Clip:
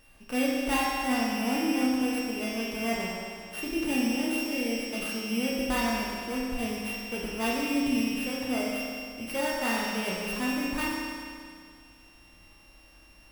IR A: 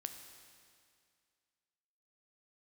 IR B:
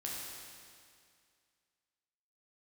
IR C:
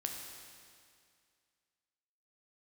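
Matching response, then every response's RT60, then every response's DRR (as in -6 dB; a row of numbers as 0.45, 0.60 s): B; 2.2, 2.2, 2.2 s; 6.5, -4.5, 1.5 dB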